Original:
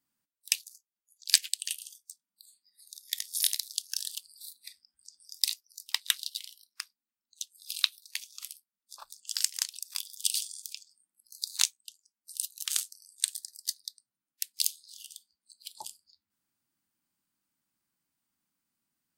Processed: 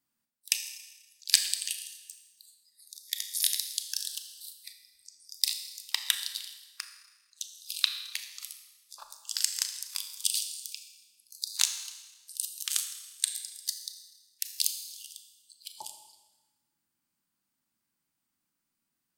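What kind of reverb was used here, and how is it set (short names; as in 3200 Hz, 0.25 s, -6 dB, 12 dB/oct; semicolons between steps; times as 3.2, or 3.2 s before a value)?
Schroeder reverb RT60 1.2 s, combs from 27 ms, DRR 7 dB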